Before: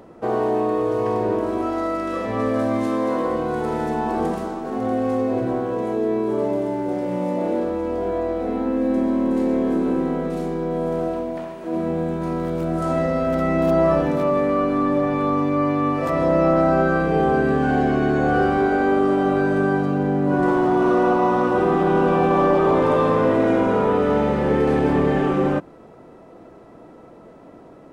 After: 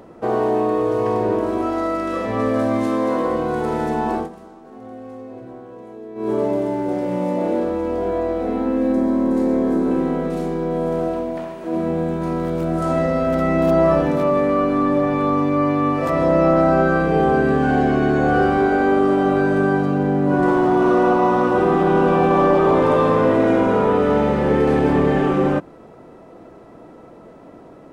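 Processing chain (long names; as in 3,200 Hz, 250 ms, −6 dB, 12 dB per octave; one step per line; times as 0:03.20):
0:04.14–0:06.30: duck −16 dB, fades 0.15 s
0:08.92–0:09.91: parametric band 2,800 Hz −7 dB 0.69 octaves
level +2 dB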